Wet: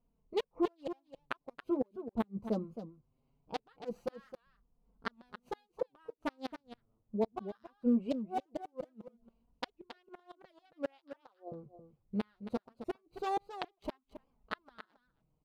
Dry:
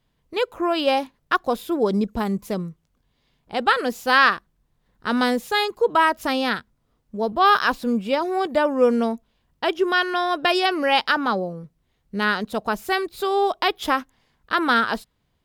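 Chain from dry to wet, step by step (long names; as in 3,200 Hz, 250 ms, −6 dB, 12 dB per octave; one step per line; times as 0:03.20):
adaptive Wiener filter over 25 samples
0:08.08–0:09.76: high-shelf EQ 3,700 Hz +6.5 dB
0:10.98–0:11.52: high-pass filter 400 Hz 24 dB per octave
gate with flip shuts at −15 dBFS, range −41 dB
flanger 0.21 Hz, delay 4.1 ms, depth 5.3 ms, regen −2%
single-tap delay 272 ms −11 dB
wow of a warped record 78 rpm, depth 160 cents
level −3.5 dB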